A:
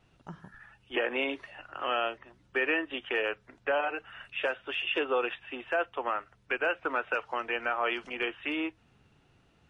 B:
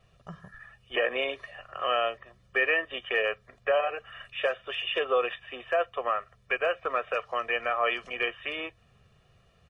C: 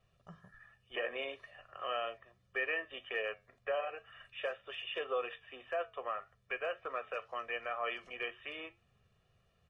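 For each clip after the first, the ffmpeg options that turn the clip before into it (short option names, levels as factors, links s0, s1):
-af "aecho=1:1:1.7:0.8"
-af "flanger=delay=9.2:depth=1.4:regen=-76:speed=1.9:shape=triangular,volume=0.501"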